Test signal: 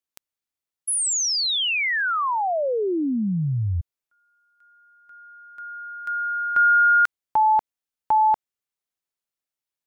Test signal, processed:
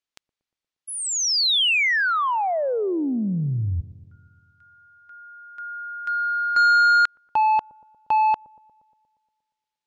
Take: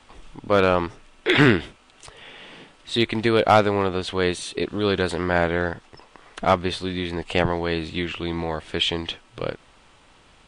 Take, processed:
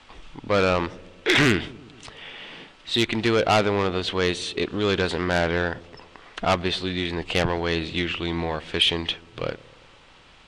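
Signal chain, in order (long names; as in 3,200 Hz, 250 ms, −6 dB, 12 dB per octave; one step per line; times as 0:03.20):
Bessel low-pass filter 3,400 Hz, order 2
soft clipping −14.5 dBFS
high-shelf EQ 2,400 Hz +10.5 dB
on a send: delay with a low-pass on its return 118 ms, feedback 64%, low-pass 510 Hz, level −19 dB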